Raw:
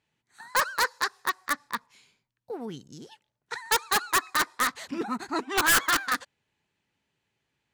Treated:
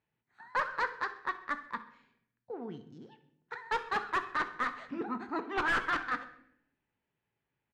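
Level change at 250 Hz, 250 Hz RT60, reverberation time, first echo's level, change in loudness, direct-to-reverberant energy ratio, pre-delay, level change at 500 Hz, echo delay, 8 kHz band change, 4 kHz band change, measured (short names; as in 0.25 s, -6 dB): -5.0 dB, 1.1 s, 0.75 s, -17.5 dB, -8.0 dB, 9.0 dB, 17 ms, -5.0 dB, 65 ms, -28.0 dB, -15.5 dB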